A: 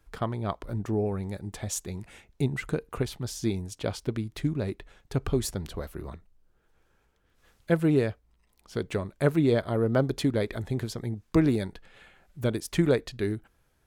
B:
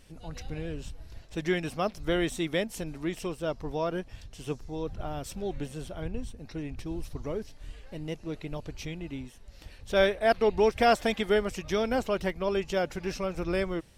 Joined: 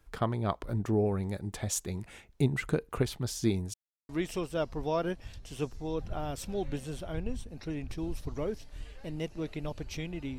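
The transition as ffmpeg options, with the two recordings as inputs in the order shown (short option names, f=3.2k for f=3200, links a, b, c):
-filter_complex "[0:a]apad=whole_dur=10.38,atrim=end=10.38,asplit=2[a][b];[a]atrim=end=3.74,asetpts=PTS-STARTPTS,afade=t=out:st=3.736:d=0.004:c=hsin[c];[b]atrim=start=3.74:end=4.09,asetpts=PTS-STARTPTS,volume=0[d];[1:a]atrim=start=2.97:end=9.26,asetpts=PTS-STARTPTS,afade=t=in:d=0.004:c=hsin[e];[c][d][e]concat=n=3:v=0:a=1"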